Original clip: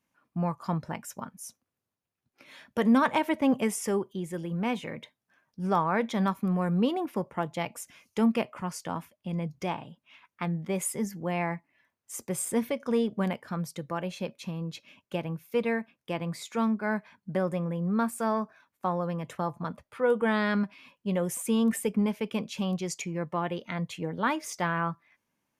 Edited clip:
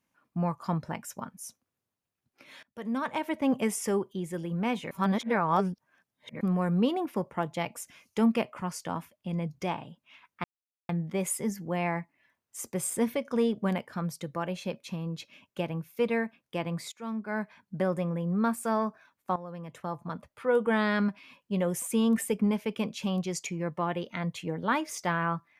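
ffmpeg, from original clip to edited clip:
ffmpeg -i in.wav -filter_complex "[0:a]asplit=7[link_01][link_02][link_03][link_04][link_05][link_06][link_07];[link_01]atrim=end=2.63,asetpts=PTS-STARTPTS,afade=type=out:start_time=2.626:duration=0.004:curve=hsin:silence=0.0630957[link_08];[link_02]atrim=start=2.63:end=4.912,asetpts=PTS-STARTPTS,afade=type=in:duration=1.11:silence=0.0630957[link_09];[link_03]atrim=start=4.908:end=6.412,asetpts=PTS-STARTPTS,areverse[link_10];[link_04]atrim=start=6.408:end=10.44,asetpts=PTS-STARTPTS,afade=type=out:start_time=4.028:duration=0.004:curve=hsin,apad=pad_dur=0.45[link_11];[link_05]atrim=start=10.44:end=16.47,asetpts=PTS-STARTPTS,afade=type=in:duration=0.004:curve=hsin,afade=type=out:start_time=6.026:duration=0.004:curve=hsin:silence=0.112202[link_12];[link_06]atrim=start=16.47:end=18.91,asetpts=PTS-STARTPTS,afade=type=in:duration=0.94:curve=qsin:silence=0.112202,afade=type=out:start_time=2.436:duration=0.004:curve=hsin:silence=0.199526[link_13];[link_07]atrim=start=18.91,asetpts=PTS-STARTPTS,afade=type=in:duration=1.5:curve=qsin:silence=0.199526[link_14];[link_08][link_09]concat=n=2:v=0:a=1[link_15];[link_15][link_10]acrossfade=duration=0.004:curve1=hsin:curve2=hsin[link_16];[link_11][link_12][link_13][link_14]concat=n=4:v=0:a=1[link_17];[link_16][link_17]acrossfade=duration=0.004:curve1=hsin:curve2=hsin" out.wav

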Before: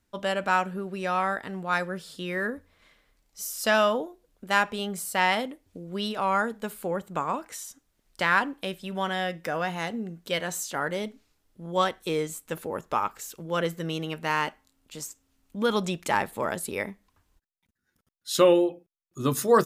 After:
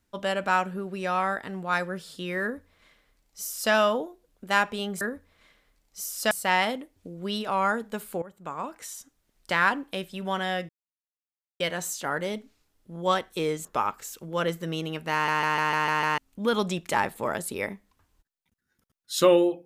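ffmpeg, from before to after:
ffmpeg -i in.wav -filter_complex "[0:a]asplit=14[link_01][link_02][link_03][link_04][link_05][link_06][link_07][link_08][link_09][link_10][link_11][link_12][link_13][link_14];[link_01]atrim=end=5.012[link_15];[link_02]atrim=start=2.418:end=3.722[link_16];[link_03]atrim=start=5.008:end=6.92,asetpts=PTS-STARTPTS,afade=type=out:start_time=1.908:duration=0.004:curve=hsin:silence=0.133352[link_17];[link_04]atrim=start=6.92:end=9.39,asetpts=PTS-STARTPTS,afade=type=in:duration=0.75:silence=0.133352,afade=type=out:start_time=2.466:duration=0.004:curve=hsin[link_18];[link_05]atrim=start=9.39:end=10.3,asetpts=PTS-STARTPTS,volume=0[link_19];[link_06]atrim=start=10.3:end=12.352,asetpts=PTS-STARTPTS,afade=type=in:duration=0.004:curve=hsin[link_20];[link_07]atrim=start=12.818:end=14.452[link_21];[link_08]atrim=start=14.298:end=14.452[link_22];[link_09]atrim=start=14.298:end=14.452[link_23];[link_10]atrim=start=14.298:end=14.452[link_24];[link_11]atrim=start=14.298:end=14.452[link_25];[link_12]atrim=start=14.298:end=14.452[link_26];[link_13]atrim=start=14.298:end=14.452[link_27];[link_14]atrim=start=15.348[link_28];[link_15][link_16]acrossfade=duration=0.004:curve1=hsin:curve2=hsin[link_29];[link_17][link_18][link_19][link_20]concat=n=4:v=0:a=1[link_30];[link_29][link_30]acrossfade=duration=0.004:curve1=hsin:curve2=hsin[link_31];[link_31][link_21]acrossfade=duration=0.004:curve1=hsin:curve2=hsin[link_32];[link_32][link_22]acrossfade=duration=0.004:curve1=hsin:curve2=hsin[link_33];[link_33][link_23]acrossfade=duration=0.004:curve1=hsin:curve2=hsin[link_34];[link_34][link_24]acrossfade=duration=0.004:curve1=hsin:curve2=hsin[link_35];[link_35][link_25]acrossfade=duration=0.004:curve1=hsin:curve2=hsin[link_36];[link_36][link_26]acrossfade=duration=0.004:curve1=hsin:curve2=hsin[link_37];[link_37][link_27]acrossfade=duration=0.004:curve1=hsin:curve2=hsin[link_38];[link_38][link_28]acrossfade=duration=0.004:curve1=hsin:curve2=hsin" out.wav

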